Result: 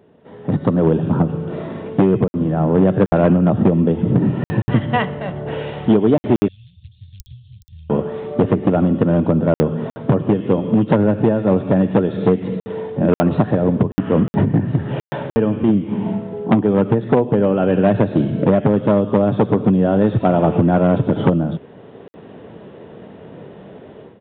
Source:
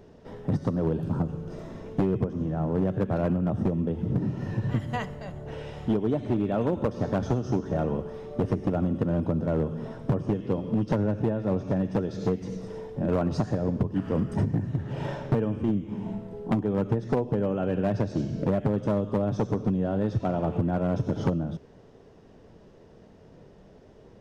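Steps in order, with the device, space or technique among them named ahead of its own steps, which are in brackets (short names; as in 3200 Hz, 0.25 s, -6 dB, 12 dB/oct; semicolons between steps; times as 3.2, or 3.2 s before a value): call with lost packets (HPF 130 Hz 12 dB/oct; downsampling 8000 Hz; AGC gain up to 15.5 dB; packet loss packets of 60 ms); 6.48–7.9 inverse Chebyshev band-stop 270–1300 Hz, stop band 70 dB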